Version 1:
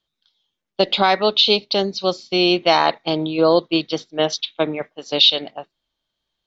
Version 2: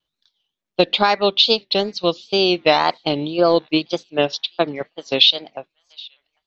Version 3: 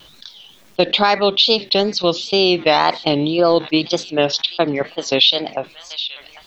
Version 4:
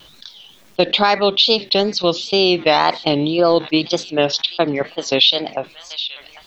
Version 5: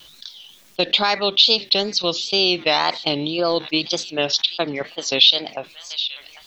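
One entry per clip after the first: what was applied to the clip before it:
feedback echo behind a high-pass 783 ms, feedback 32%, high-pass 1.7 kHz, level -23.5 dB; transient shaper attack +3 dB, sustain -5 dB; wow and flutter 140 cents; trim -1 dB
level flattener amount 50%; trim -1 dB
no audible change
treble shelf 2.3 kHz +10.5 dB; trim -7 dB

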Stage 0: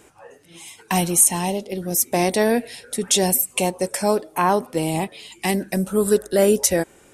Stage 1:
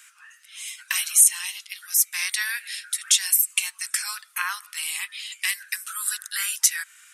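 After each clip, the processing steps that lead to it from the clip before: steep high-pass 1.3 kHz 48 dB/octave; in parallel at 0 dB: compression, threshold -31 dBFS, peak gain reduction 19.5 dB; on the sum: trim -1 dB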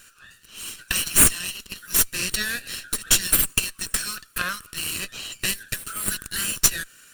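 comb filter that takes the minimum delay 0.71 ms; peaking EQ 840 Hz -7.5 dB 0.68 oct; trim +2.5 dB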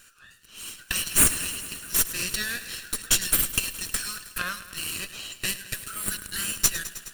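bit-crushed delay 105 ms, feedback 80%, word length 7-bit, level -14 dB; trim -3.5 dB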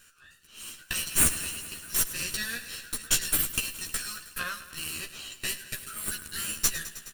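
doubling 13 ms -3.5 dB; trim -5 dB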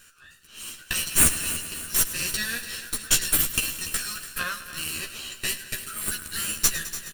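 feedback delay 290 ms, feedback 44%, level -14 dB; trim +4 dB

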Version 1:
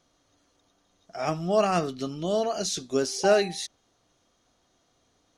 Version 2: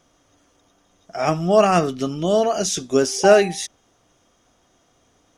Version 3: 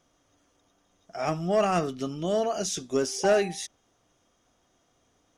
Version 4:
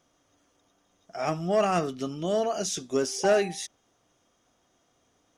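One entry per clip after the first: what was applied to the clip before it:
peaking EQ 4.2 kHz -12 dB 0.22 oct; trim +8 dB
saturation -6.5 dBFS, distortion -19 dB; trim -7.5 dB
bass shelf 68 Hz -7 dB

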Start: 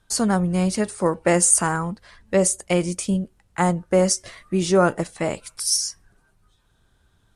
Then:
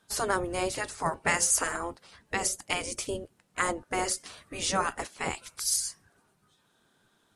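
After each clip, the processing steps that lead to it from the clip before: spectral gate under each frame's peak -10 dB weak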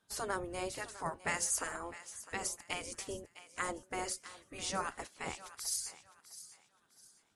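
thinning echo 656 ms, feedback 32%, high-pass 610 Hz, level -14.5 dB; trim -9 dB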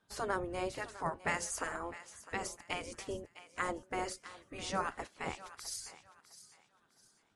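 low-pass 2.8 kHz 6 dB/octave; trim +2.5 dB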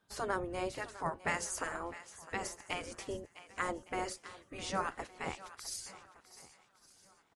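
feedback delay 1162 ms, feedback 29%, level -22 dB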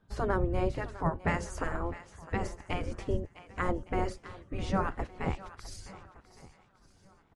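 RIAA curve playback; trim +3 dB

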